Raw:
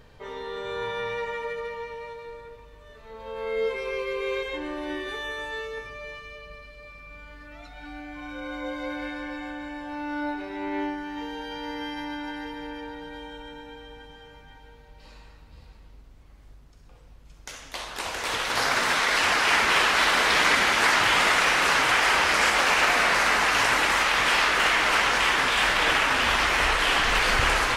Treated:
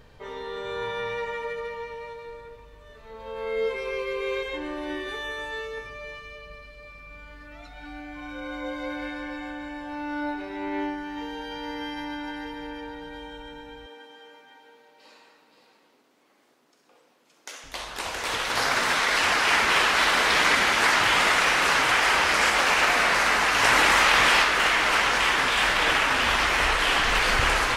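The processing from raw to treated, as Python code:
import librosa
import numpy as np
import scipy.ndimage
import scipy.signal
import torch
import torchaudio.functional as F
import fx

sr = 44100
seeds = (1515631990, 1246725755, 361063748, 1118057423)

y = fx.highpass(x, sr, hz=270.0, slope=24, at=(13.86, 17.64))
y = fx.env_flatten(y, sr, amount_pct=100, at=(23.62, 24.42), fade=0.02)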